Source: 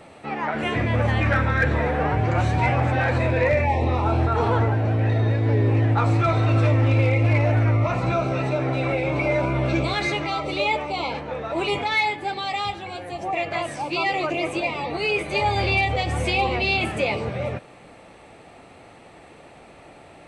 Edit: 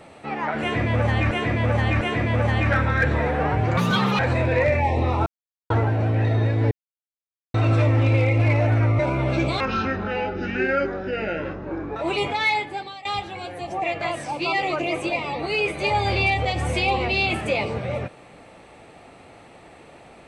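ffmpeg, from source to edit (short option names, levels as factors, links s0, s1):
-filter_complex "[0:a]asplit=13[s0][s1][s2][s3][s4][s5][s6][s7][s8][s9][s10][s11][s12];[s0]atrim=end=1.312[s13];[s1]atrim=start=0.608:end=1.312[s14];[s2]atrim=start=0.608:end=2.374[s15];[s3]atrim=start=2.37:end=3.04,asetpts=PTS-STARTPTS,asetrate=70119,aresample=44100,atrim=end_sample=18583,asetpts=PTS-STARTPTS[s16];[s4]atrim=start=3.036:end=4.11,asetpts=PTS-STARTPTS,afade=t=out:st=1.07:d=0.004:c=hsin[s17];[s5]atrim=start=4.11:end=4.55,asetpts=PTS-STARTPTS,volume=0[s18];[s6]atrim=start=4.55:end=5.56,asetpts=PTS-STARTPTS,afade=t=in:d=0.004:c=hsin,afade=t=out:st=1.006:d=0.004:c=hsin[s19];[s7]atrim=start=5.56:end=6.39,asetpts=PTS-STARTPTS,volume=0[s20];[s8]atrim=start=6.39:end=7.842,asetpts=PTS-STARTPTS,afade=t=in:d=0.004:c=hsin[s21];[s9]atrim=start=9.348:end=9.964[s22];[s10]atrim=start=9.96:end=11.47,asetpts=PTS-STARTPTS,asetrate=28224,aresample=44100,atrim=end_sample=104048,asetpts=PTS-STARTPTS[s23];[s11]atrim=start=11.466:end=12.56,asetpts=PTS-STARTPTS,afade=t=out:st=0.654:d=0.44:silence=0.112202[s24];[s12]atrim=start=12.56,asetpts=PTS-STARTPTS,afade=t=in:d=0.004:c=hsin:silence=0.112202[s25];[s13][s14]acrossfade=d=0.004:c1=hsin:c2=hsin[s26];[s26][s15]acrossfade=d=0.004:c1=hsin:c2=hsin[s27];[s27][s16]acrossfade=d=0.004:c1=hsin:c2=hsin[s28];[s17][s18][s19][s20][s21]concat=n=5:v=0:a=1[s29];[s28][s29]acrossfade=d=0.004:c1=hsin:c2=hsin[s30];[s30][s22]acrossfade=d=0.004:c1=hsin:c2=hsin[s31];[s31][s23]acrossfade=d=0.004:c1=hsin:c2=hsin[s32];[s24][s25]concat=n=2:v=0:a=1[s33];[s32][s33]acrossfade=d=0.004:c1=hsin:c2=hsin"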